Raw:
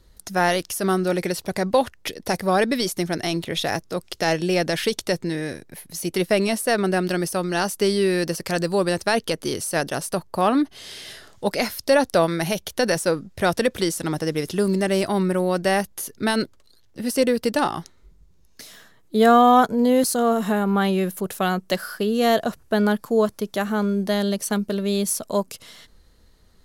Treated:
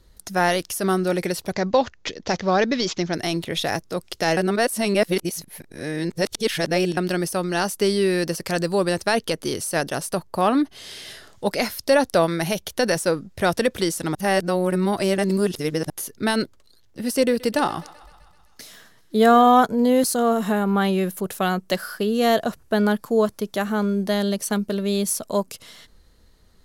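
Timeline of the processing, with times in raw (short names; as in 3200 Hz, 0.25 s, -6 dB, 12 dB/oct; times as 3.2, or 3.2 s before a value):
1.52–3.14 careless resampling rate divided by 3×, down none, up filtered
4.37–6.97 reverse
14.15–15.9 reverse
17.17–19.48 thinning echo 0.128 s, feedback 68%, level -19.5 dB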